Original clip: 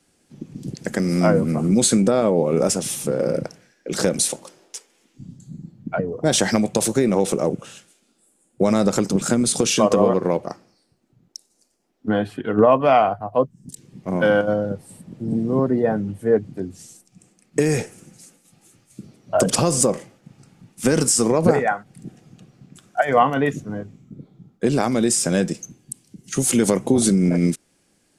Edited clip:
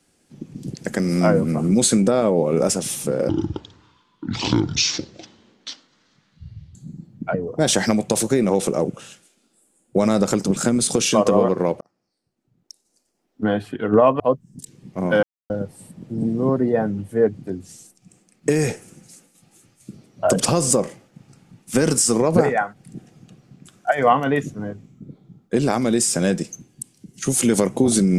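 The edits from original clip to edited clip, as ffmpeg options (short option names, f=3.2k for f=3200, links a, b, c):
-filter_complex "[0:a]asplit=7[a][b][c][d][e][f][g];[a]atrim=end=3.294[h];[b]atrim=start=3.29:end=5.4,asetpts=PTS-STARTPTS,asetrate=26901,aresample=44100[i];[c]atrim=start=5.396:end=10.46,asetpts=PTS-STARTPTS,afade=t=out:st=5.06:d=0.004:c=hsin[j];[d]atrim=start=10.46:end=12.852,asetpts=PTS-STARTPTS,afade=t=in:d=1.64[k];[e]atrim=start=13.298:end=14.33,asetpts=PTS-STARTPTS,afade=t=out:st=1.028:d=0.004:c=hsin[l];[f]atrim=start=14.33:end=14.6,asetpts=PTS-STARTPTS,volume=0[m];[g]atrim=start=14.6,asetpts=PTS-STARTPTS,afade=t=in:d=0.004:c=hsin[n];[h][i]acrossfade=d=0.004:c1=hsin:c2=hsin[o];[j][k]concat=n=2:v=0:a=1[p];[o][p]acrossfade=d=0.004:c1=hsin:c2=hsin[q];[l][m][n]concat=n=3:v=0:a=1[r];[q][r]acrossfade=d=0.004:c1=hsin:c2=hsin"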